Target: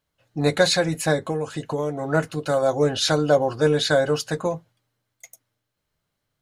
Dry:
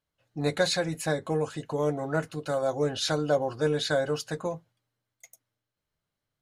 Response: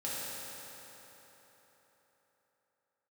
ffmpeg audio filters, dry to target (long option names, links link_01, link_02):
-filter_complex "[0:a]asplit=3[link_01][link_02][link_03];[link_01]afade=type=out:start_time=1.23:duration=0.02[link_04];[link_02]acompressor=threshold=-29dB:ratio=6,afade=type=in:start_time=1.23:duration=0.02,afade=type=out:start_time=2.08:duration=0.02[link_05];[link_03]afade=type=in:start_time=2.08:duration=0.02[link_06];[link_04][link_05][link_06]amix=inputs=3:normalize=0,volume=7dB"